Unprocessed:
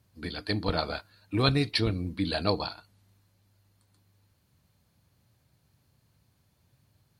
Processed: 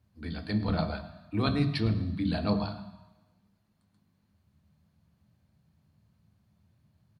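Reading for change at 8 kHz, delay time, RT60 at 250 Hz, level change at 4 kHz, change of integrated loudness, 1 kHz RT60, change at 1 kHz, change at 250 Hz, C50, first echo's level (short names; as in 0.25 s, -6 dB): under -10 dB, 0.108 s, 0.95 s, -8.0 dB, -1.0 dB, 1.2 s, -3.0 dB, +2.0 dB, 11.0 dB, -18.5 dB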